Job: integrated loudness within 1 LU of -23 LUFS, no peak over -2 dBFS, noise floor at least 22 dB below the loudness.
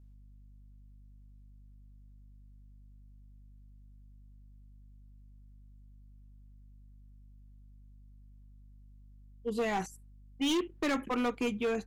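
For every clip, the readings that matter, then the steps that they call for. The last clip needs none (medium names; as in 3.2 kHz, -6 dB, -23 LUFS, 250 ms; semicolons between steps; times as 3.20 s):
clipped samples 1.2%; clipping level -26.5 dBFS; hum 50 Hz; highest harmonic 250 Hz; hum level -52 dBFS; loudness -33.0 LUFS; peak level -26.5 dBFS; loudness target -23.0 LUFS
-> clip repair -26.5 dBFS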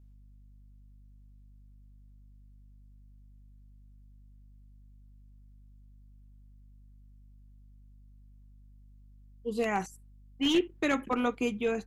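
clipped samples 0.0%; hum 50 Hz; highest harmonic 250 Hz; hum level -52 dBFS
-> de-hum 50 Hz, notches 5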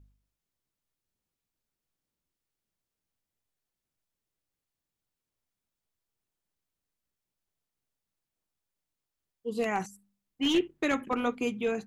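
hum not found; loudness -30.5 LUFS; peak level -17.0 dBFS; loudness target -23.0 LUFS
-> trim +7.5 dB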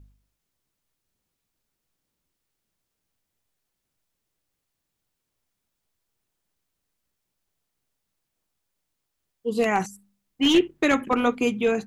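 loudness -23.0 LUFS; peak level -9.5 dBFS; noise floor -81 dBFS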